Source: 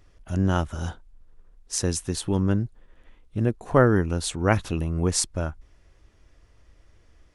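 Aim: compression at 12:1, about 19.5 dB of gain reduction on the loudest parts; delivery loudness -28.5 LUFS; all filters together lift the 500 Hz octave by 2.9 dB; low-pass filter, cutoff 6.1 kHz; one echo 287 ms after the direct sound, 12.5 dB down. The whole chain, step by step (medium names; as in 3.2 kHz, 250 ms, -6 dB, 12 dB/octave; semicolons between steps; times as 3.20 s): low-pass 6.1 kHz; peaking EQ 500 Hz +3.5 dB; compression 12:1, threshold -30 dBFS; delay 287 ms -12.5 dB; trim +7.5 dB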